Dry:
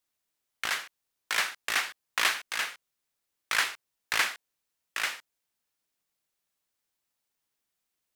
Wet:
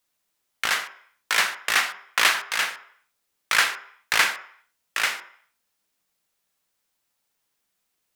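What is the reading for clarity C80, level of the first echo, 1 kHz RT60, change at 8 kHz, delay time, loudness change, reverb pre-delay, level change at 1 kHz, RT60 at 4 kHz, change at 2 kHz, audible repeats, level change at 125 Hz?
16.0 dB, no echo audible, 0.60 s, +6.5 dB, no echo audible, +7.0 dB, 3 ms, +7.5 dB, 0.65 s, +7.0 dB, no echo audible, can't be measured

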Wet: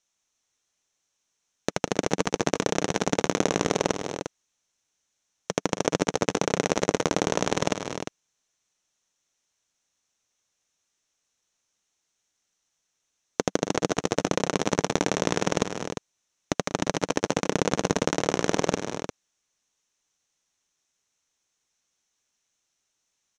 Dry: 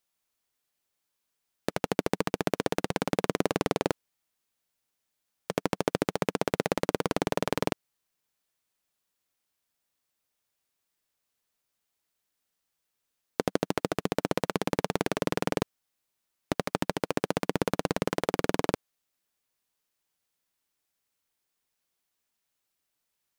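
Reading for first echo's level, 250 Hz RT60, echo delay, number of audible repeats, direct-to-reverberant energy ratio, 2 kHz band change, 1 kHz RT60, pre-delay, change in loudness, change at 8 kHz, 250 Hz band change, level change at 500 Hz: −15.0 dB, no reverb audible, 192 ms, 4, no reverb audible, +4.0 dB, no reverb audible, no reverb audible, +3.5 dB, +11.0 dB, +3.5 dB, +3.5 dB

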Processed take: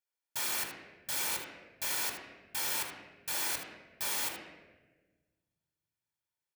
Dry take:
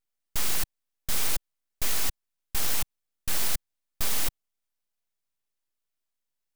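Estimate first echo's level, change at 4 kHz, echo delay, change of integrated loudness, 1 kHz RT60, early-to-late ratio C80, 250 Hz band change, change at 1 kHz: −10.5 dB, −3.5 dB, 76 ms, −4.0 dB, 1.0 s, 6.0 dB, −6.0 dB, −1.0 dB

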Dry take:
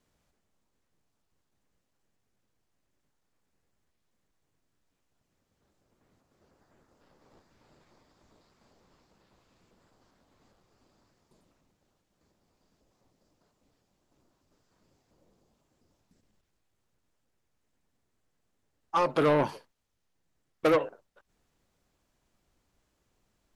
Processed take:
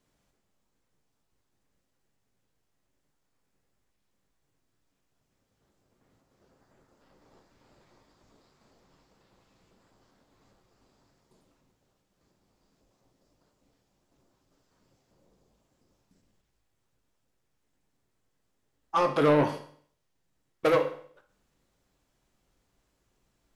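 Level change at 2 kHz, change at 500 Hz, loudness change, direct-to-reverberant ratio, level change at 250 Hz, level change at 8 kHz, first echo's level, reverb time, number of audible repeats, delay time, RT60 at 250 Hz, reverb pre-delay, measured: +1.0 dB, +1.5 dB, +1.0 dB, 6.0 dB, +2.0 dB, can't be measured, no echo audible, 0.55 s, no echo audible, no echo audible, 0.55 s, 8 ms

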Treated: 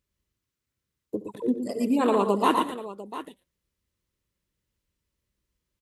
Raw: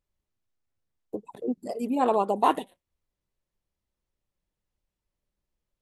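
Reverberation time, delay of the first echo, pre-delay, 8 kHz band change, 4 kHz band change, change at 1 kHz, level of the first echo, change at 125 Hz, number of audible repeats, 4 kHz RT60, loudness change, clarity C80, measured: no reverb audible, 70 ms, no reverb audible, +6.0 dB, +6.0 dB, −0.5 dB, −17.5 dB, can't be measured, 4, no reverb audible, +1.5 dB, no reverb audible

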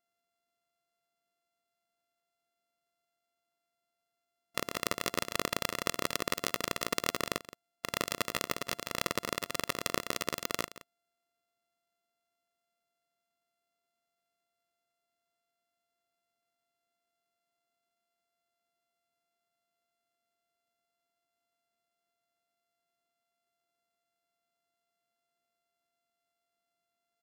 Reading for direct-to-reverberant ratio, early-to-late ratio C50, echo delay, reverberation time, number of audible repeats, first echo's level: no reverb audible, no reverb audible, 171 ms, no reverb audible, 1, −16.0 dB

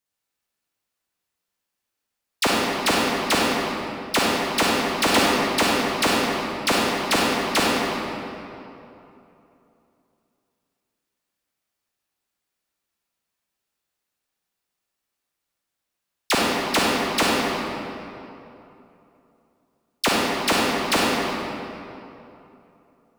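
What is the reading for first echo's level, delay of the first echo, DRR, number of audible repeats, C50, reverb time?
no echo audible, no echo audible, −5.0 dB, no echo audible, −3.5 dB, 2.9 s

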